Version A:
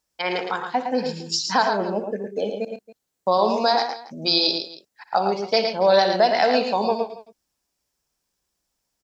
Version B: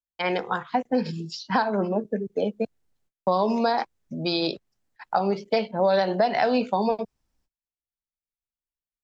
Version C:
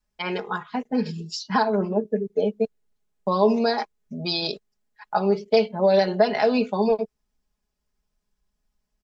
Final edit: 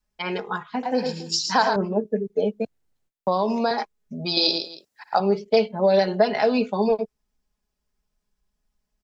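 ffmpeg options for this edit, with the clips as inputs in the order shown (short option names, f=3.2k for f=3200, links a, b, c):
-filter_complex "[0:a]asplit=2[a][b];[2:a]asplit=4[c][d][e][f];[c]atrim=end=0.832[g];[a]atrim=start=0.828:end=1.762[h];[d]atrim=start=1.758:end=2.602[i];[1:a]atrim=start=2.598:end=3.712[j];[e]atrim=start=3.708:end=4.372[k];[b]atrim=start=4.368:end=5.202[l];[f]atrim=start=5.198[m];[g][h]acrossfade=d=0.004:c1=hsin:c2=hsin[n];[n][i]acrossfade=d=0.004:c1=hsin:c2=hsin[o];[o][j]acrossfade=d=0.004:c1=hsin:c2=hsin[p];[p][k]acrossfade=d=0.004:c1=hsin:c2=hsin[q];[q][l]acrossfade=d=0.004:c1=hsin:c2=hsin[r];[r][m]acrossfade=d=0.004:c1=hsin:c2=hsin"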